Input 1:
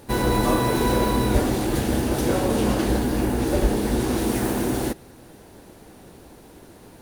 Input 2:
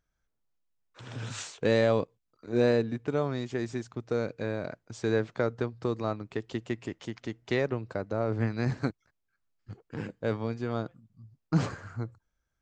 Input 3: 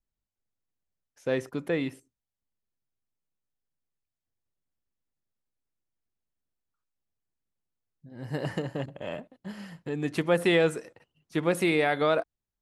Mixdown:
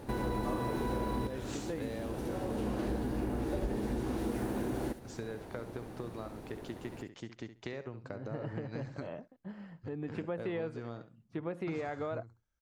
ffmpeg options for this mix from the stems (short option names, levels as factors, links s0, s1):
-filter_complex "[0:a]volume=1,asplit=2[s0][s1];[s1]volume=0.0708[s2];[1:a]acompressor=threshold=0.0251:ratio=4,adelay=150,volume=0.531,asplit=2[s3][s4];[s4]volume=0.251[s5];[2:a]aemphasis=mode=reproduction:type=75fm,volume=0.501,asplit=2[s6][s7];[s7]apad=whole_len=309581[s8];[s0][s8]sidechaincompress=threshold=0.00398:ratio=8:attack=16:release=780[s9];[s9][s6]amix=inputs=2:normalize=0,highshelf=f=2800:g=-10.5,acompressor=threshold=0.0178:ratio=1.5,volume=1[s10];[s2][s5]amix=inputs=2:normalize=0,aecho=0:1:68|136|204:1|0.17|0.0289[s11];[s3][s10][s11]amix=inputs=3:normalize=0,acompressor=threshold=0.0158:ratio=2"